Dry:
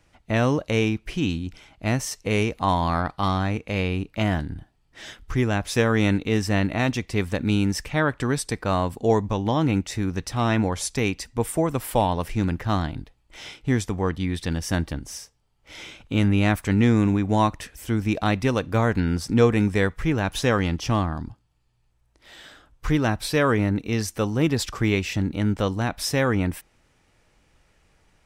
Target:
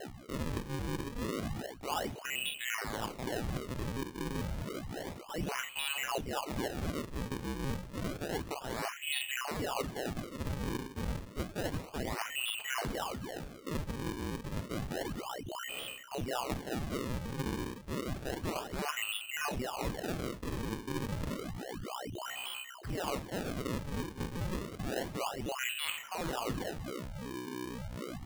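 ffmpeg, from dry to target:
-filter_complex "[0:a]agate=range=0.2:threshold=0.00282:ratio=16:detection=peak,asplit=2[s0][s1];[s1]asplit=6[s2][s3][s4][s5][s6][s7];[s2]adelay=94,afreqshift=-32,volume=0.211[s8];[s3]adelay=188,afreqshift=-64,volume=0.116[s9];[s4]adelay=282,afreqshift=-96,volume=0.0638[s10];[s5]adelay=376,afreqshift=-128,volume=0.0351[s11];[s6]adelay=470,afreqshift=-160,volume=0.0193[s12];[s7]adelay=564,afreqshift=-192,volume=0.0106[s13];[s8][s9][s10][s11][s12][s13]amix=inputs=6:normalize=0[s14];[s0][s14]amix=inputs=2:normalize=0,aeval=exprs='val(0)+0.01*(sin(2*PI*50*n/s)+sin(2*PI*2*50*n/s)/2+sin(2*PI*3*50*n/s)/3+sin(2*PI*4*50*n/s)/4+sin(2*PI*5*50*n/s)/5)':c=same,asplit=2[s15][s16];[s16]adelay=221.6,volume=0.0794,highshelf=f=4000:g=-4.99[s17];[s15][s17]amix=inputs=2:normalize=0,asetrate=55563,aresample=44100,atempo=0.793701,lowpass=f=2600:t=q:w=0.5098,lowpass=f=2600:t=q:w=0.6013,lowpass=f=2600:t=q:w=0.9,lowpass=f=2600:t=q:w=2.563,afreqshift=-3100,areverse,acompressor=threshold=0.0178:ratio=6,areverse,asplit=2[s18][s19];[s19]adelay=47,volume=0.422[s20];[s18][s20]amix=inputs=2:normalize=0,acrusher=samples=37:mix=1:aa=0.000001:lfo=1:lforange=59.2:lforate=0.3"

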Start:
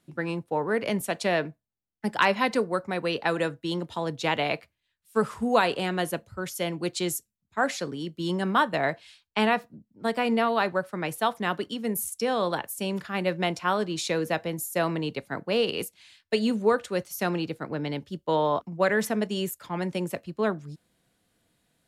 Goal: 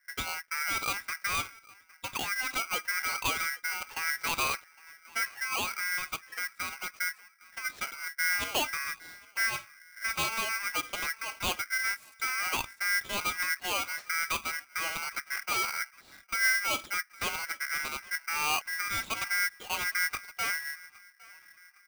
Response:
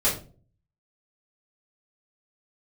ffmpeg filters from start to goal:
-filter_complex "[0:a]lowpass=2000,alimiter=limit=0.133:level=0:latency=1:release=115,asettb=1/sr,asplit=3[s0][s1][s2];[s0]atrim=end=5.244[s3];[s1]atrim=start=5.24:end=7.65,asetpts=PTS-STARTPTS,afade=t=in:d=0.004:c=qsin,afade=t=out:st=2.406:d=0.004:c=qsin,acompressor=threshold=0.0316:ratio=4[s4];[s2]atrim=start=7.646[s5];[s3][s4]acrossfade=d=0.004:c1=hsin:c2=qsin[s6];[s6][s5]acrossfade=d=0.004:c1=qsin:c2=hsin,asoftclip=type=tanh:threshold=0.0501,acrossover=split=460[s7][s8];[s7]aeval=exprs='val(0)*(1-1/2+1/2*cos(2*PI*1.7*n/s))':c=same[s9];[s8]aeval=exprs='val(0)*(1-1/2-1/2*cos(2*PI*1.7*n/s))':c=same[s10];[s9][s10]amix=inputs=2:normalize=0,asplit=2[s11][s12];[s12]adelay=810,lowpass=f=920:p=1,volume=0.0944,asplit=2[s13][s14];[s14]adelay=810,lowpass=f=920:p=1,volume=0.5,asplit=2[s15][s16];[s16]adelay=810,lowpass=f=920:p=1,volume=0.5,asplit=2[s17][s18];[s18]adelay=810,lowpass=f=920:p=1,volume=0.5[s19];[s11][s13][s15][s17][s19]amix=inputs=5:normalize=0,aeval=exprs='val(0)*sgn(sin(2*PI*1800*n/s))':c=same,volume=1.88"

